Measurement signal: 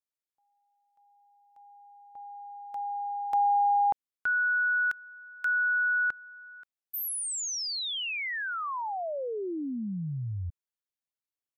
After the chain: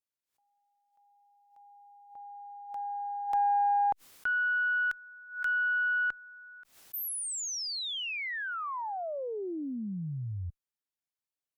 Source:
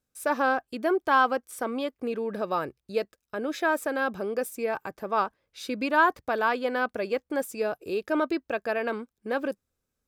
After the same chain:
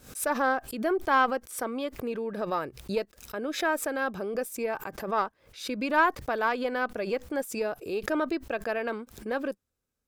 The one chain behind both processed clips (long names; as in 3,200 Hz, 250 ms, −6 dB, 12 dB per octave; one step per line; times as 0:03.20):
harmonic generator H 2 −16 dB, 7 −44 dB, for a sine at −9 dBFS
background raised ahead of every attack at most 120 dB per second
level −2 dB